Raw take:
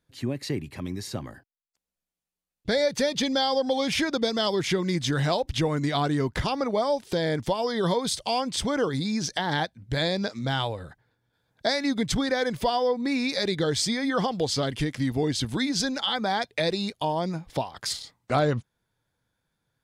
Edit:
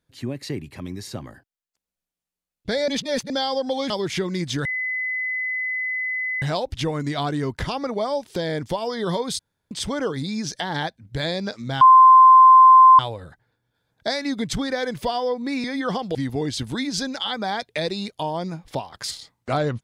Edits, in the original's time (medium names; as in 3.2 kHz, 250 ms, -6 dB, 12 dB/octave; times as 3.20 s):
2.88–3.30 s: reverse
3.90–4.44 s: delete
5.19 s: add tone 2.02 kHz -23 dBFS 1.77 s
8.16–8.48 s: room tone
10.58 s: add tone 1.04 kHz -6.5 dBFS 1.18 s
13.23–13.93 s: delete
14.44–14.97 s: delete